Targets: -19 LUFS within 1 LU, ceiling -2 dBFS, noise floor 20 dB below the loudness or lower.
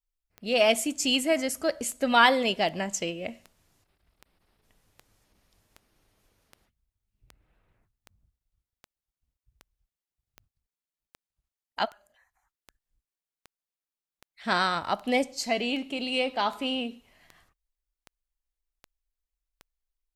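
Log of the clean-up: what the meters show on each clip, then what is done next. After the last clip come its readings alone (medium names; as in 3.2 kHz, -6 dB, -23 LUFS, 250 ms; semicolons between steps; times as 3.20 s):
clicks found 26; loudness -26.5 LUFS; peak level -4.5 dBFS; loudness target -19.0 LUFS
-> de-click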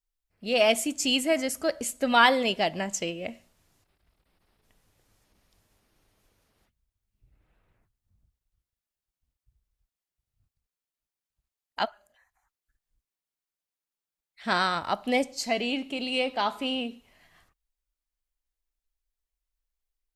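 clicks found 0; loudness -26.5 LUFS; peak level -4.5 dBFS; loudness target -19.0 LUFS
-> trim +7.5 dB; peak limiter -2 dBFS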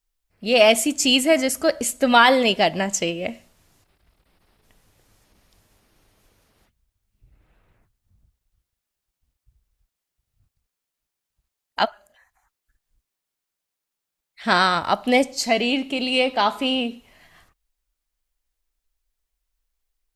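loudness -19.5 LUFS; peak level -2.0 dBFS; noise floor -84 dBFS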